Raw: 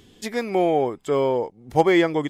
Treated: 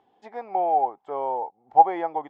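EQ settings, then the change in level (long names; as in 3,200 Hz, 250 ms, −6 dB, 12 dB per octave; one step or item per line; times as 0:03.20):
resonant band-pass 810 Hz, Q 8
high-frequency loss of the air 65 metres
+8.5 dB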